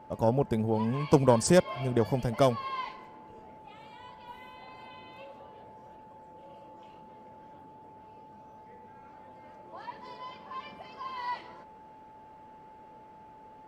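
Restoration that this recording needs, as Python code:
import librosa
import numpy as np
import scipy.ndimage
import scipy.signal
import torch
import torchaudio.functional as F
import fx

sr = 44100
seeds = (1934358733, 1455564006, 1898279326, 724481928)

y = fx.notch(x, sr, hz=870.0, q=30.0)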